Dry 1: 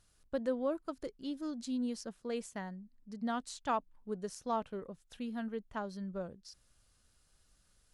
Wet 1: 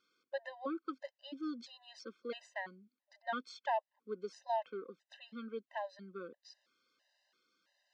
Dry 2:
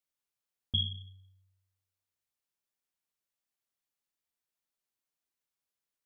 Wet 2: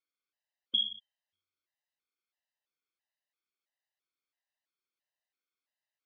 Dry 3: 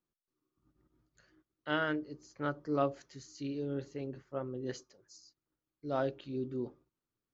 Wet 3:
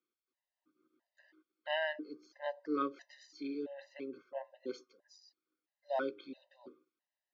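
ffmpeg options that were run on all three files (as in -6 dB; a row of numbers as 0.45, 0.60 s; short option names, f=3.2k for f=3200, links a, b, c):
-af "highpass=f=290:w=0.5412,highpass=f=290:w=1.3066,equalizer=f=440:t=q:w=4:g=-4,equalizer=f=1k:t=q:w=4:g=-3,equalizer=f=1.9k:t=q:w=4:g=5,lowpass=f=4.9k:w=0.5412,lowpass=f=4.9k:w=1.3066,afftfilt=real='re*gt(sin(2*PI*1.5*pts/sr)*(1-2*mod(floor(b*sr/1024/520),2)),0)':imag='im*gt(sin(2*PI*1.5*pts/sr)*(1-2*mod(floor(b*sr/1024/520),2)),0)':win_size=1024:overlap=0.75,volume=2.5dB"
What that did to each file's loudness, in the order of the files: -3.5, +2.0, -3.0 LU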